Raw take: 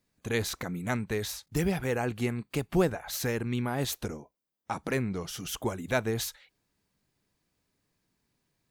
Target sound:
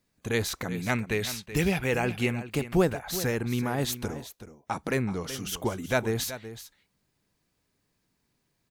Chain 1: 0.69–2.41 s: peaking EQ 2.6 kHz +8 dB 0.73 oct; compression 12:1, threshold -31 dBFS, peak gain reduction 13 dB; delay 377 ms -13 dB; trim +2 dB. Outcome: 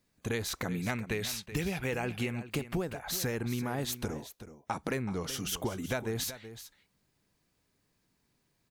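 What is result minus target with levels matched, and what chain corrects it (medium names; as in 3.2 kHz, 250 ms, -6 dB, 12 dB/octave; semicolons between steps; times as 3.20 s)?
compression: peak gain reduction +13 dB
0.69–2.41 s: peaking EQ 2.6 kHz +8 dB 0.73 oct; delay 377 ms -13 dB; trim +2 dB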